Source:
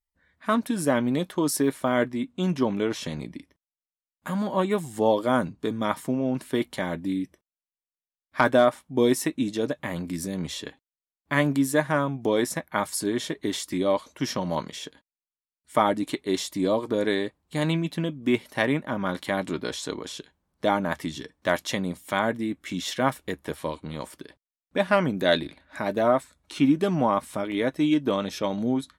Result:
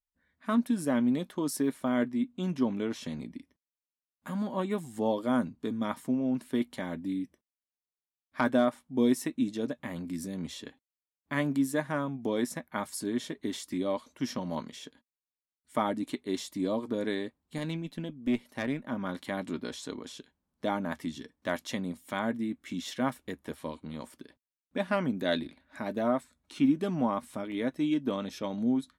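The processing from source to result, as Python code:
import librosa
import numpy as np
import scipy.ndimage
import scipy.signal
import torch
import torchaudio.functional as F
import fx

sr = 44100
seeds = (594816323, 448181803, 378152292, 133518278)

y = fx.tube_stage(x, sr, drive_db=15.0, bias=0.6, at=(17.58, 18.85))
y = fx.peak_eq(y, sr, hz=240.0, db=9.0, octaves=0.38)
y = y * 10.0 ** (-8.5 / 20.0)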